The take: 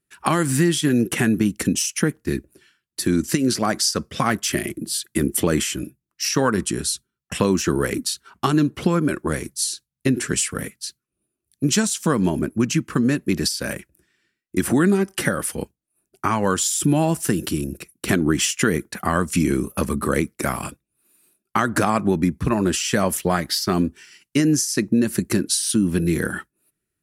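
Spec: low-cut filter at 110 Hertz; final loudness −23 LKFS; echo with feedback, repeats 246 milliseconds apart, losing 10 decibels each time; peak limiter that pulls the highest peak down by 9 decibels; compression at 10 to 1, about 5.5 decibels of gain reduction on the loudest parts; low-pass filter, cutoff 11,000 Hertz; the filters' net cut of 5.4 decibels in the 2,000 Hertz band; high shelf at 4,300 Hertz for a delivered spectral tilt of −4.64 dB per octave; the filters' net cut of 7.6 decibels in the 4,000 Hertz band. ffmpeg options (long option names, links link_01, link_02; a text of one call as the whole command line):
ffmpeg -i in.wav -af "highpass=110,lowpass=11000,equalizer=frequency=2000:width_type=o:gain=-5,equalizer=frequency=4000:width_type=o:gain=-5,highshelf=frequency=4300:gain=-6,acompressor=threshold=-20dB:ratio=10,alimiter=limit=-17dB:level=0:latency=1,aecho=1:1:246|492|738|984:0.316|0.101|0.0324|0.0104,volume=5.5dB" out.wav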